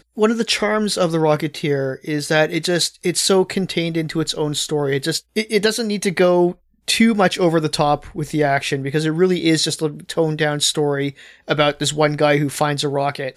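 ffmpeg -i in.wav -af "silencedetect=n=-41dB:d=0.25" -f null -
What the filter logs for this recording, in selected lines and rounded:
silence_start: 6.54
silence_end: 6.88 | silence_duration: 0.34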